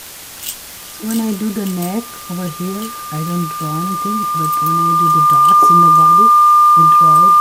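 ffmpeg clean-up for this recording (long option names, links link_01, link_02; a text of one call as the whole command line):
ffmpeg -i in.wav -af "adeclick=threshold=4,bandreject=frequency=1200:width=30,afwtdn=0.025" out.wav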